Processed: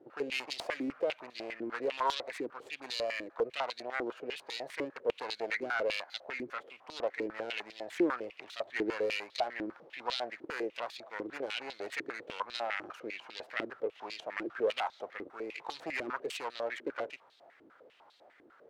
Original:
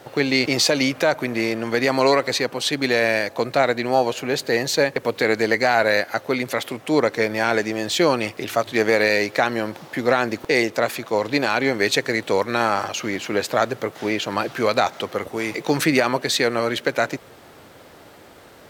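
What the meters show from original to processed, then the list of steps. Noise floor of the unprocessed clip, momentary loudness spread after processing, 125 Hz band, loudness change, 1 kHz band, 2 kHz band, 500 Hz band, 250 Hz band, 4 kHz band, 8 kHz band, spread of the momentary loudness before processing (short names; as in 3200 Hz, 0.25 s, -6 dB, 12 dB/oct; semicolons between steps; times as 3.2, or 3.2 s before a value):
-46 dBFS, 10 LU, -28.5 dB, -16.5 dB, -15.0 dB, -16.5 dB, -16.0 dB, -17.0 dB, -15.5 dB, -23.5 dB, 7 LU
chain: self-modulated delay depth 0.27 ms; stepped band-pass 10 Hz 330–3900 Hz; gain -5 dB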